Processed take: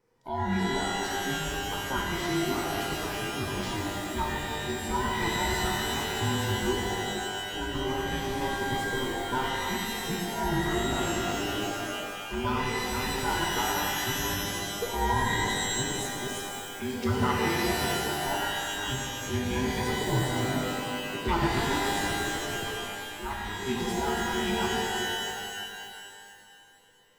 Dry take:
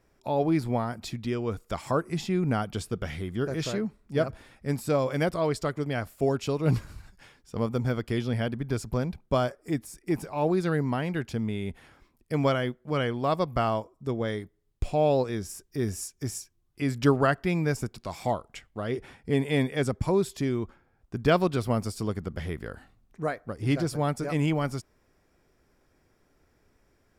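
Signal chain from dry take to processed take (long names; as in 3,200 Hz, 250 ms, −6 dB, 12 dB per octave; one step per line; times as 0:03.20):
frequency inversion band by band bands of 500 Hz
reverb with rising layers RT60 2.4 s, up +12 semitones, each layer −2 dB, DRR −2 dB
level −7.5 dB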